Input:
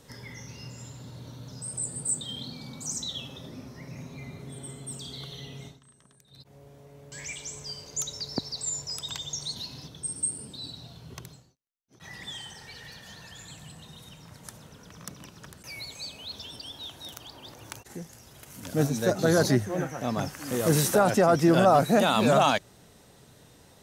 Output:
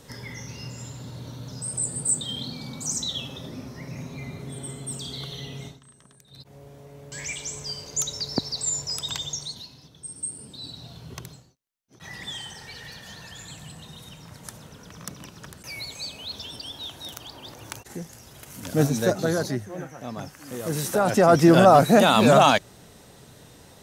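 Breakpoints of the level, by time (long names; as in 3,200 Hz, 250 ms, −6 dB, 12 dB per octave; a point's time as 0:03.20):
0:09.24 +5 dB
0:09.79 −7.5 dB
0:10.96 +4 dB
0:19.02 +4 dB
0:19.48 −5.5 dB
0:20.74 −5.5 dB
0:21.33 +5.5 dB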